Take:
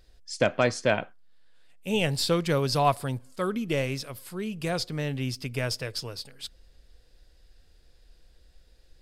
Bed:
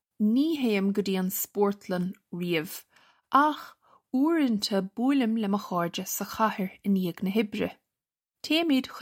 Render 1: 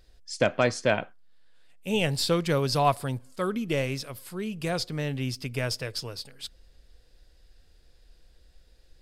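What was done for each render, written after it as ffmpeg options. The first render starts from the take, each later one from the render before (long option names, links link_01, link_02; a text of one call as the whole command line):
ffmpeg -i in.wav -af anull out.wav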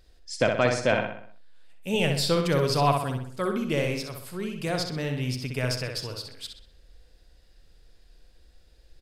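ffmpeg -i in.wav -filter_complex "[0:a]asplit=2[link_01][link_02];[link_02]adelay=63,lowpass=frequency=4900:poles=1,volume=-4.5dB,asplit=2[link_03][link_04];[link_04]adelay=63,lowpass=frequency=4900:poles=1,volume=0.49,asplit=2[link_05][link_06];[link_06]adelay=63,lowpass=frequency=4900:poles=1,volume=0.49,asplit=2[link_07][link_08];[link_08]adelay=63,lowpass=frequency=4900:poles=1,volume=0.49,asplit=2[link_09][link_10];[link_10]adelay=63,lowpass=frequency=4900:poles=1,volume=0.49,asplit=2[link_11][link_12];[link_12]adelay=63,lowpass=frequency=4900:poles=1,volume=0.49[link_13];[link_01][link_03][link_05][link_07][link_09][link_11][link_13]amix=inputs=7:normalize=0" out.wav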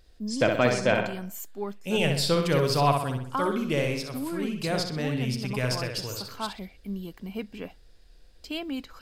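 ffmpeg -i in.wav -i bed.wav -filter_complex "[1:a]volume=-9dB[link_01];[0:a][link_01]amix=inputs=2:normalize=0" out.wav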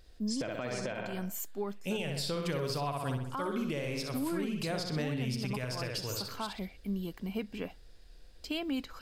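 ffmpeg -i in.wav -af "acompressor=threshold=-29dB:ratio=2.5,alimiter=level_in=1dB:limit=-24dB:level=0:latency=1:release=147,volume=-1dB" out.wav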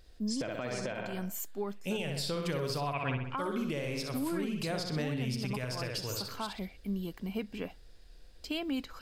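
ffmpeg -i in.wav -filter_complex "[0:a]asplit=3[link_01][link_02][link_03];[link_01]afade=type=out:start_time=2.92:duration=0.02[link_04];[link_02]lowpass=frequency=2400:width_type=q:width=7,afade=type=in:start_time=2.92:duration=0.02,afade=type=out:start_time=3.37:duration=0.02[link_05];[link_03]afade=type=in:start_time=3.37:duration=0.02[link_06];[link_04][link_05][link_06]amix=inputs=3:normalize=0" out.wav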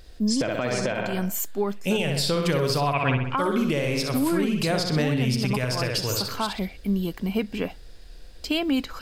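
ffmpeg -i in.wav -af "volume=10.5dB" out.wav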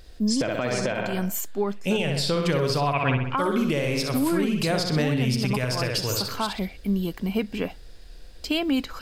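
ffmpeg -i in.wav -filter_complex "[0:a]asettb=1/sr,asplit=3[link_01][link_02][link_03];[link_01]atrim=end=1.404[link_04];[link_02]atrim=start=1.4:end=3.37,asetpts=PTS-STARTPTS,afade=type=in:duration=0.004:curve=qsin,afade=type=out:start_time=1.966:duration=0.004:curve=qsin,highshelf=frequency=11000:gain=-10.5[link_05];[link_03]atrim=start=3.366[link_06];[link_04][link_05]acrossfade=duration=0.004:curve1=hsin:curve2=qsin[link_07];[link_07][link_06]acrossfade=duration=0.004:curve1=qsin:curve2=hsin" out.wav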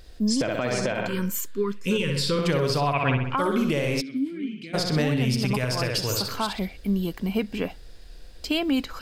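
ffmpeg -i in.wav -filter_complex "[0:a]asettb=1/sr,asplit=3[link_01][link_02][link_03];[link_01]atrim=end=1.084[link_04];[link_02]atrim=start=1.08:end=2.39,asetpts=PTS-STARTPTS,afade=type=in:duration=0.004:curve=qsin,afade=type=out:start_time=1.306:duration=0.004:curve=qsin,asuperstop=centerf=710:order=20:qfactor=2[link_05];[link_03]atrim=start=2.386[link_06];[link_04][link_05]acrossfade=duration=0.004:curve1=hsin:curve2=qsin[link_07];[link_07][link_06]acrossfade=duration=0.004:curve1=qsin:curve2=hsin,asplit=3[link_08][link_09][link_10];[link_08]afade=type=out:start_time=4:duration=0.02[link_11];[link_09]asplit=3[link_12][link_13][link_14];[link_12]bandpass=frequency=270:width_type=q:width=8,volume=0dB[link_15];[link_13]bandpass=frequency=2290:width_type=q:width=8,volume=-6dB[link_16];[link_14]bandpass=frequency=3010:width_type=q:width=8,volume=-9dB[link_17];[link_15][link_16][link_17]amix=inputs=3:normalize=0,afade=type=in:start_time=4:duration=0.02,afade=type=out:start_time=4.73:duration=0.02[link_18];[link_10]afade=type=in:start_time=4.73:duration=0.02[link_19];[link_11][link_18][link_19]amix=inputs=3:normalize=0" out.wav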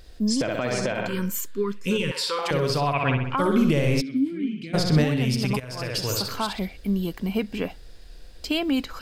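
ffmpeg -i in.wav -filter_complex "[0:a]asettb=1/sr,asplit=3[link_01][link_02][link_03];[link_01]atrim=end=2.114[link_04];[link_02]atrim=start=2.11:end=2.51,asetpts=PTS-STARTPTS,afade=type=in:duration=0.004:curve=qsin,afade=type=out:start_time=0.396:duration=0.004:curve=qsin,highpass=frequency=790:width_type=q:width=9.7[link_05];[link_03]atrim=start=2.506[link_06];[link_04][link_05]acrossfade=duration=0.004:curve1=hsin:curve2=qsin[link_07];[link_07][link_06]acrossfade=duration=0.004:curve1=qsin:curve2=hsin,asettb=1/sr,asplit=3[link_08][link_09][link_10];[link_08]atrim=end=3.394[link_11];[link_09]atrim=start=3.39:end=5.04,asetpts=PTS-STARTPTS,afade=type=in:duration=0.004:curve=qsin,afade=type=out:start_time=1.646:duration=0.004:curve=qsin,lowshelf=frequency=210:gain=9.5[link_12];[link_10]atrim=start=5.036[link_13];[link_11][link_12]acrossfade=duration=0.004:curve1=hsin:curve2=qsin[link_14];[link_14][link_13]acrossfade=duration=0.004:curve1=qsin:curve2=hsin,asplit=2[link_15][link_16];[link_15]atrim=end=5.6,asetpts=PTS-STARTPTS,afade=type=out:start_time=5.596:duration=0.004:curve=hsin:silence=0.149624[link_17];[link_16]atrim=start=5.6,asetpts=PTS-STARTPTS,afade=type=in:duration=0.45:silence=0.149624[link_18];[link_17][link_18]concat=n=2:v=0:a=1" out.wav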